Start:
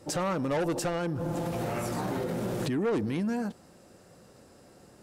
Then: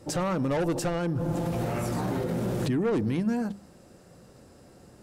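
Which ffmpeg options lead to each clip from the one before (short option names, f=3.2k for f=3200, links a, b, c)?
-af "lowshelf=f=200:g=8,bandreject=f=50:t=h:w=6,bandreject=f=100:t=h:w=6,bandreject=f=150:t=h:w=6,bandreject=f=200:t=h:w=6"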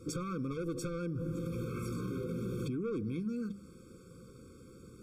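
-af "acompressor=threshold=-34dB:ratio=6,afftfilt=real='re*eq(mod(floor(b*sr/1024/530),2),0)':imag='im*eq(mod(floor(b*sr/1024/530),2),0)':win_size=1024:overlap=0.75"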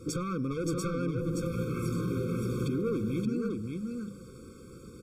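-af "aecho=1:1:574:0.596,volume=4.5dB"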